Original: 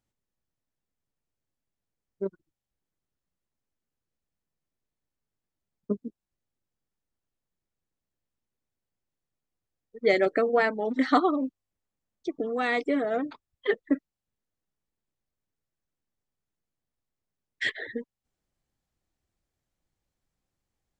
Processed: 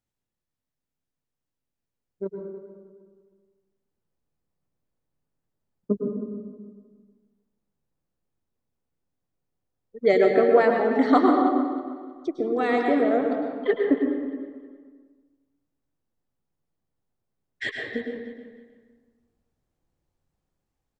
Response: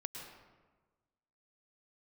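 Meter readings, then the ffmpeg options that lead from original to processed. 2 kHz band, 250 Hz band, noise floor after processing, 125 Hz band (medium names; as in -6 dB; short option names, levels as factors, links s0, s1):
0.0 dB, +6.5 dB, under -85 dBFS, no reading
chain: -filter_complex "[0:a]asplit=2[s0][s1];[s1]adelay=313,lowpass=f=4600:p=1,volume=0.224,asplit=2[s2][s3];[s3]adelay=313,lowpass=f=4600:p=1,volume=0.27,asplit=2[s4][s5];[s5]adelay=313,lowpass=f=4600:p=1,volume=0.27[s6];[s0][s2][s4][s6]amix=inputs=4:normalize=0,acrossover=split=1200[s7][s8];[s7]dynaudnorm=f=780:g=7:m=2.51[s9];[s9][s8]amix=inputs=2:normalize=0[s10];[1:a]atrim=start_sample=2205[s11];[s10][s11]afir=irnorm=-1:irlink=0"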